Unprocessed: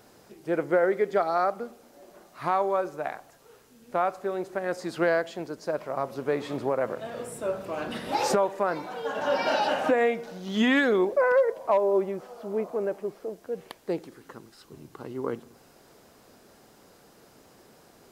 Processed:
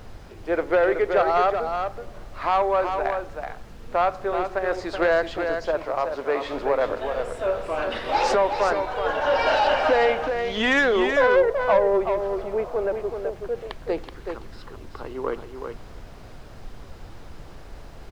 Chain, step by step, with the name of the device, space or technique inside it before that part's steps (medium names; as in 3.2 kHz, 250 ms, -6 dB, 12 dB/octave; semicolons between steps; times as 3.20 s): aircraft cabin announcement (band-pass 430–4200 Hz; saturation -19.5 dBFS, distortion -17 dB; brown noise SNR 15 dB); 5.86–6.45 s: high-pass 180 Hz 6 dB/octave; delay 377 ms -6.5 dB; trim +7 dB